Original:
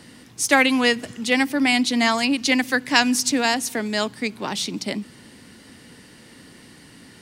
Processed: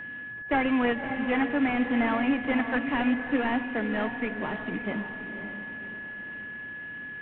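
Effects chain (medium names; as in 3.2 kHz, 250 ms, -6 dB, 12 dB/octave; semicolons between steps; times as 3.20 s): CVSD coder 16 kbps; echo that smears into a reverb 557 ms, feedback 42%, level -8 dB; whistle 1.7 kHz -33 dBFS; trim -3.5 dB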